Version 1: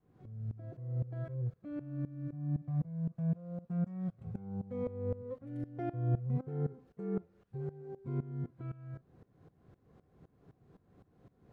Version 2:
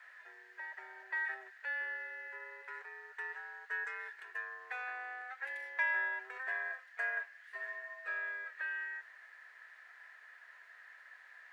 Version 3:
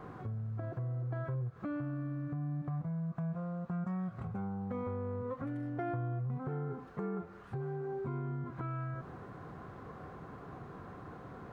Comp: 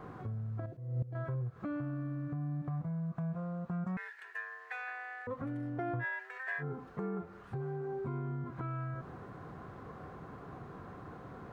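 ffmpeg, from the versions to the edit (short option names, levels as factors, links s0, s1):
-filter_complex "[1:a]asplit=2[s0][s1];[2:a]asplit=4[s2][s3][s4][s5];[s2]atrim=end=0.662[s6];[0:a]atrim=start=0.658:end=1.152[s7];[s3]atrim=start=1.148:end=3.972[s8];[s0]atrim=start=3.968:end=5.272[s9];[s4]atrim=start=5.268:end=6.05[s10];[s1]atrim=start=5.99:end=6.64[s11];[s5]atrim=start=6.58[s12];[s6][s7]acrossfade=d=0.004:c1=hsin:c2=hsin[s13];[s13][s8]acrossfade=d=0.004:c1=hsin:c2=hsin[s14];[s14][s9]acrossfade=d=0.004:c1=hsin:c2=hsin[s15];[s15][s10]acrossfade=d=0.004:c1=hsin:c2=hsin[s16];[s16][s11]acrossfade=d=0.06:c1=tri:c2=tri[s17];[s17][s12]acrossfade=d=0.06:c1=tri:c2=tri"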